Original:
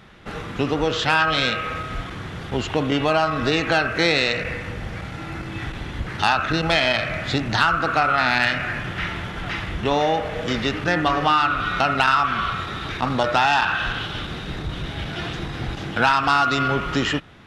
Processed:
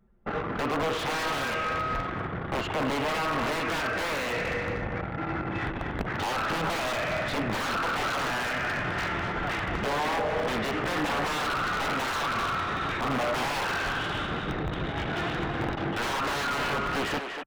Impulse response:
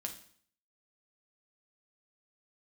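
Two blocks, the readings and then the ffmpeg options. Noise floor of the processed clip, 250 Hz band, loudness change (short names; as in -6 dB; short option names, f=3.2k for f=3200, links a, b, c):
-34 dBFS, -6.5 dB, -7.5 dB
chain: -filter_complex "[0:a]anlmdn=25.1,asplit=2[a][b];[b]acompressor=threshold=-28dB:ratio=10,volume=1dB[c];[a][c]amix=inputs=2:normalize=0,aeval=exprs='(mod(5.31*val(0)+1,2)-1)/5.31':c=same,asplit=2[d][e];[e]adelay=240,highpass=300,lowpass=3.4k,asoftclip=type=hard:threshold=-24.5dB,volume=-7dB[f];[d][f]amix=inputs=2:normalize=0,asplit=2[g][h];[h]highpass=f=720:p=1,volume=17dB,asoftclip=type=tanh:threshold=-13dB[i];[g][i]amix=inputs=2:normalize=0,lowpass=f=1k:p=1,volume=-6dB,volume=-5.5dB"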